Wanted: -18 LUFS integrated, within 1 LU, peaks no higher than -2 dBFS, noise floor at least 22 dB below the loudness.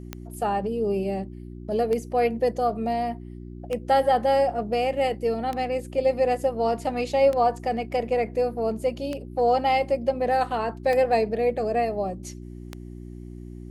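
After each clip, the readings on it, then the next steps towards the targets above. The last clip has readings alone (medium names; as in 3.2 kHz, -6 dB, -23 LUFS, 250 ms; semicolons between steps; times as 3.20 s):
clicks found 8; hum 60 Hz; highest harmonic 360 Hz; hum level -37 dBFS; loudness -24.5 LUFS; peak level -10.0 dBFS; loudness target -18.0 LUFS
-> de-click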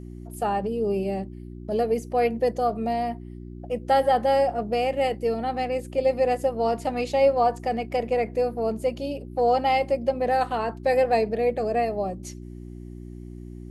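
clicks found 0; hum 60 Hz; highest harmonic 360 Hz; hum level -37 dBFS
-> de-hum 60 Hz, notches 6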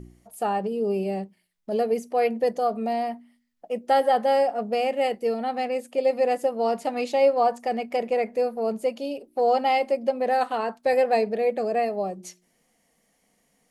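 hum not found; loudness -25.0 LUFS; peak level -10.5 dBFS; loudness target -18.0 LUFS
-> trim +7 dB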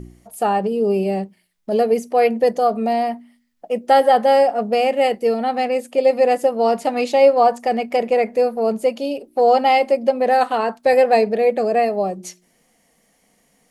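loudness -18.0 LUFS; peak level -3.5 dBFS; noise floor -62 dBFS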